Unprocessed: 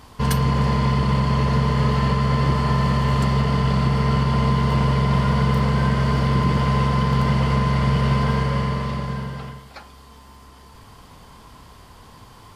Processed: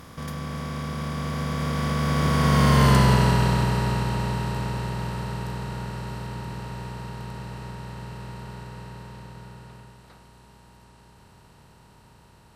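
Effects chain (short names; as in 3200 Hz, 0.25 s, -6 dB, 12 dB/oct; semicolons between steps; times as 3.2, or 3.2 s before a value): per-bin compression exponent 0.4; Doppler pass-by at 2.89, 34 m/s, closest 14 m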